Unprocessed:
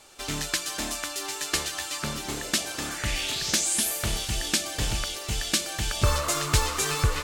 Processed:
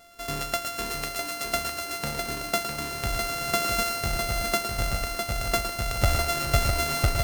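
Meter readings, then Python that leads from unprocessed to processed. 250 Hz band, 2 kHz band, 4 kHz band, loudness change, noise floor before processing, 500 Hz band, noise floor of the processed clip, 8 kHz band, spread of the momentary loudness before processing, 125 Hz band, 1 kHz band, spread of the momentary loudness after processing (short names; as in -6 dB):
-1.0 dB, +1.5 dB, -3.0 dB, -0.5 dB, -37 dBFS, +4.5 dB, -36 dBFS, -5.5 dB, 7 LU, +1.0 dB, +4.5 dB, 6 LU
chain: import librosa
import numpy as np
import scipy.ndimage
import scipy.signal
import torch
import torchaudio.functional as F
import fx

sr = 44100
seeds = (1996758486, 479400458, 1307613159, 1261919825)

y = np.r_[np.sort(x[:len(x) // 64 * 64].reshape(-1, 64), axis=1).ravel(), x[len(x) // 64 * 64:]]
y = fx.echo_multitap(y, sr, ms=(111, 655), db=(-8.5, -5.5))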